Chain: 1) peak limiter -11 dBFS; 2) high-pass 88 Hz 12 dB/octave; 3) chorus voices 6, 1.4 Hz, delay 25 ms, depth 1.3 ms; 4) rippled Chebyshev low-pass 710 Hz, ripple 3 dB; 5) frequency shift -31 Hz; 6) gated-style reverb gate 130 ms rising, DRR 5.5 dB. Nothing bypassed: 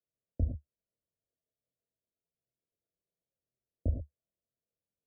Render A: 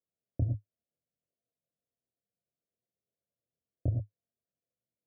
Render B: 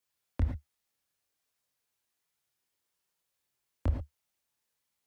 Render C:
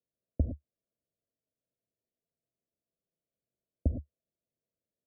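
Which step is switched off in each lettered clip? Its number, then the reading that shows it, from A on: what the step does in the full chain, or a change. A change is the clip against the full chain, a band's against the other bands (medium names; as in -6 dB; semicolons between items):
5, crest factor change -1.5 dB; 4, loudness change +1.5 LU; 3, momentary loudness spread change -4 LU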